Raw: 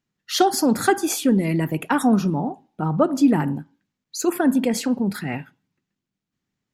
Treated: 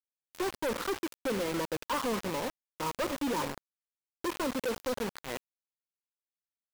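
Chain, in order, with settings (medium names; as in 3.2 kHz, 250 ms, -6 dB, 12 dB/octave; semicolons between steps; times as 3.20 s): hum 50 Hz, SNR 12 dB; two resonant band-passes 740 Hz, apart 0.95 oct; companded quantiser 2-bit; trim -4 dB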